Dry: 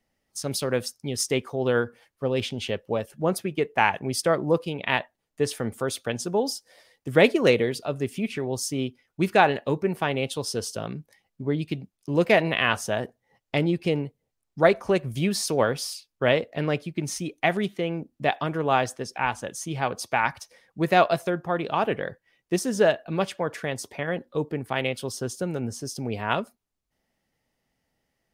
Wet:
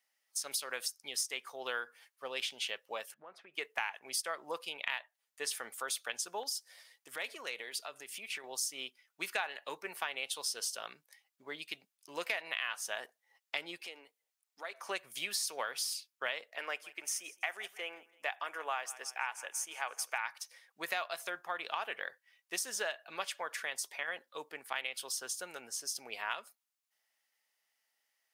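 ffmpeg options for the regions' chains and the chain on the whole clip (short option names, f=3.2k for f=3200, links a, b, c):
-filter_complex "[0:a]asettb=1/sr,asplit=3[a][b][c];[a]atrim=end=3.144[d];[b]atrim=start=3.14:end=3.54,asetpts=PTS-STARTPTS,afade=t=in:d=0.004:c=qsin,afade=t=out:st=0.396:d=0.004:c=qsin,lowpass=1.8k,acompressor=threshold=-34dB:ratio=6:attack=3.2:release=140:knee=1:detection=peak[e];[c]atrim=start=3.536[f];[d][e]acrossfade=d=0.004:c1=hsin:c2=qsin[g];[g][f]acrossfade=d=0.004:c1=qsin:c2=hsin,asettb=1/sr,asplit=3[h][i][j];[h]atrim=end=6.434[k];[i]atrim=start=6.43:end=8.44,asetpts=PTS-STARTPTS,afade=t=in:d=0.004:c=qsin,afade=t=out:st=2.006:d=0.004:c=qsin,asoftclip=type=hard:threshold=-7dB,acompressor=threshold=-30dB:ratio=3:attack=3.2:release=140:knee=1:detection=peak[l];[j]atrim=start=8.436[m];[k][l]acrossfade=d=0.004:c1=hsin:c2=qsin[n];[n][m]acrossfade=d=0.004:c1=qsin:c2=hsin,asettb=1/sr,asplit=3[o][p][q];[o]atrim=end=13.804[r];[p]atrim=start=13.8:end=14.8,asetpts=PTS-STARTPTS,afade=t=in:d=0.004:c=qsin,afade=t=out:st=0.996:d=0.004:c=qsin,highpass=f=220:w=0.5412,highpass=f=220:w=1.3066,acompressor=threshold=-37dB:ratio=2.5:attack=3.2:release=140:knee=1:detection=peak[s];[q]atrim=start=14.796[t];[r][s]acrossfade=d=0.004:c1=hsin:c2=qsin[u];[u][t]acrossfade=d=0.004:c1=qsin:c2=hsin,asettb=1/sr,asplit=3[v][w][x];[v]atrim=end=16.564[y];[w]atrim=start=16.56:end=20.18,asetpts=PTS-STARTPTS,afade=t=in:d=0.004:c=qsin,afade=t=out:st=3.616:d=0.004:c=qsin,highpass=360,equalizer=f=4k:t=o:w=0.47:g=-11.5,aecho=1:1:165|330|495:0.0794|0.0365|0.0168,atrim=end_sample=159642[z];[x]atrim=start=20.176[aa];[y][z]acrossfade=d=0.004:c1=hsin:c2=qsin[ab];[ab][aa]acrossfade=d=0.004:c1=qsin:c2=hsin,highpass=1.2k,highshelf=f=8.3k:g=5.5,acompressor=threshold=-31dB:ratio=6,volume=-1.5dB"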